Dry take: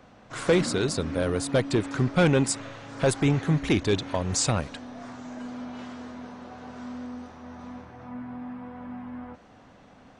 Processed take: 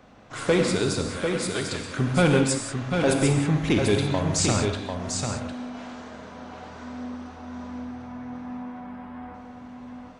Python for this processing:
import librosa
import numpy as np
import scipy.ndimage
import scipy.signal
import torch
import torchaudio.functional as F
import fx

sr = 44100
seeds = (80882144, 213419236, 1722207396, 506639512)

y = fx.highpass(x, sr, hz=1400.0, slope=12, at=(1.08, 1.97))
y = y + 10.0 ** (-5.5 / 20.0) * np.pad(y, (int(746 * sr / 1000.0), 0))[:len(y)]
y = fx.rev_gated(y, sr, seeds[0], gate_ms=210, shape='flat', drr_db=3.5)